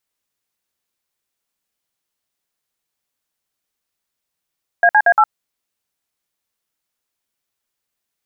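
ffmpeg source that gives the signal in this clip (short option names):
-f lavfi -i "aevalsrc='0.299*clip(min(mod(t,0.116),0.061-mod(t,0.116))/0.002,0,1)*(eq(floor(t/0.116),0)*(sin(2*PI*697*mod(t,0.116))+sin(2*PI*1633*mod(t,0.116)))+eq(floor(t/0.116),1)*(sin(2*PI*852*mod(t,0.116))+sin(2*PI*1633*mod(t,0.116)))+eq(floor(t/0.116),2)*(sin(2*PI*697*mod(t,0.116))+sin(2*PI*1633*mod(t,0.116)))+eq(floor(t/0.116),3)*(sin(2*PI*852*mod(t,0.116))+sin(2*PI*1336*mod(t,0.116))))':d=0.464:s=44100"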